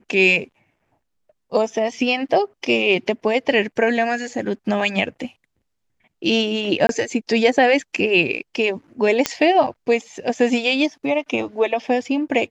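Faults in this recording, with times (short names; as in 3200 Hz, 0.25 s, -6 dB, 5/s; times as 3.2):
6.87–6.89 gap 22 ms
9.26 pop -2 dBFS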